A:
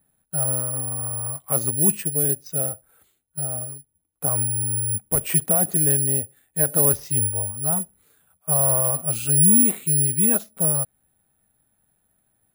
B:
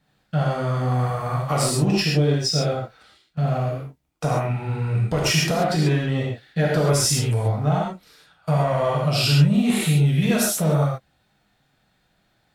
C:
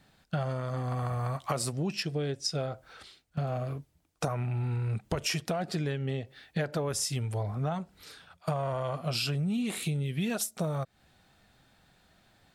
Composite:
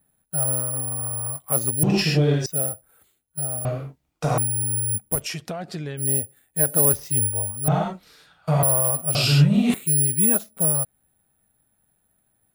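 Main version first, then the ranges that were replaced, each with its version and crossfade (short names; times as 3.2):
A
1.83–2.46 from B
3.65–4.38 from B
5.17–6.02 from C, crossfade 0.10 s
7.68–8.63 from B
9.15–9.74 from B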